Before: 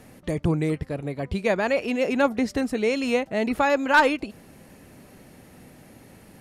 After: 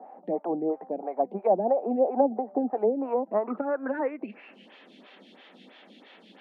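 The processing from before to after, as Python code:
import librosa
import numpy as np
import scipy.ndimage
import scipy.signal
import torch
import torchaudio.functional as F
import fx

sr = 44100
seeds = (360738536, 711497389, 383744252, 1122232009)

y = fx.env_lowpass_down(x, sr, base_hz=490.0, full_db=-18.5)
y = scipy.signal.sosfilt(scipy.signal.butter(12, 190.0, 'highpass', fs=sr, output='sos'), y)
y = fx.high_shelf(y, sr, hz=6700.0, db=-8.5)
y = fx.filter_sweep_lowpass(y, sr, from_hz=780.0, to_hz=3400.0, start_s=2.96, end_s=4.76, q=7.4)
y = fx.peak_eq(y, sr, hz=290.0, db=-5.0, octaves=2.6)
y = fx.stagger_phaser(y, sr, hz=3.0)
y = y * 10.0 ** (2.5 / 20.0)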